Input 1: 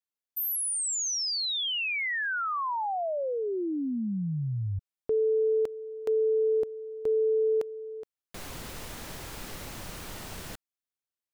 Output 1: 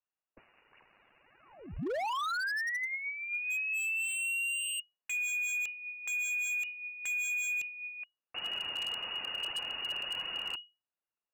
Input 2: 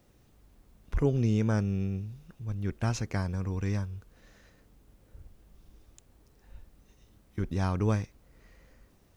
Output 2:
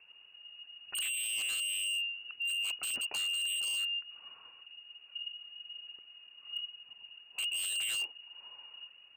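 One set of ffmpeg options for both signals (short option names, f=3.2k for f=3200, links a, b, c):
-af "equalizer=f=620:t=o:w=1.5:g=-12.5,aphaser=in_gain=1:out_gain=1:delay=3.3:decay=0.37:speed=1.7:type=triangular,asoftclip=type=tanh:threshold=-29dB,lowpass=f=2.5k:t=q:w=0.5098,lowpass=f=2.5k:t=q:w=0.6013,lowpass=f=2.5k:t=q:w=0.9,lowpass=f=2.5k:t=q:w=2.563,afreqshift=-2900,aeval=exprs='0.02*(abs(mod(val(0)/0.02+3,4)-2)-1)':c=same,volume=4dB"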